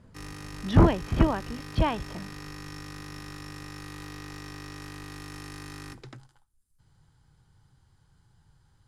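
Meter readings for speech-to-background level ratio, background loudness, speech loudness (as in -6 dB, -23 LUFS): 16.5 dB, -42.0 LUFS, -25.5 LUFS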